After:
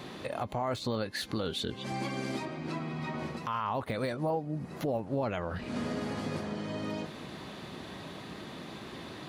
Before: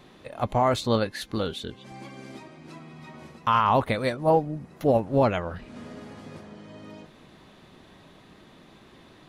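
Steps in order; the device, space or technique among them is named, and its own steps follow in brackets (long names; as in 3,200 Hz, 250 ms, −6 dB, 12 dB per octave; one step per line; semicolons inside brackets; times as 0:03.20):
0:02.45–0:03.37: high-shelf EQ 5,700 Hz −10.5 dB
broadcast voice chain (high-pass filter 73 Hz; de-essing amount 85%; downward compressor 4 to 1, threshold −38 dBFS, peak gain reduction 18 dB; parametric band 4,500 Hz +3.5 dB 0.21 octaves; brickwall limiter −31.5 dBFS, peak gain reduction 9 dB)
level +8.5 dB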